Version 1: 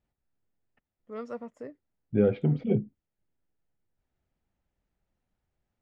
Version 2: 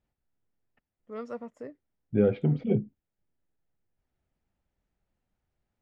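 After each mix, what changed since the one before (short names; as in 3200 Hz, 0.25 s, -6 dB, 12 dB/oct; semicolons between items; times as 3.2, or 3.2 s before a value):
none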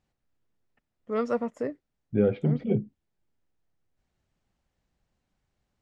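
first voice +10.5 dB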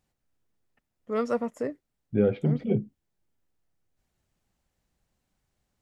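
master: remove air absorption 68 m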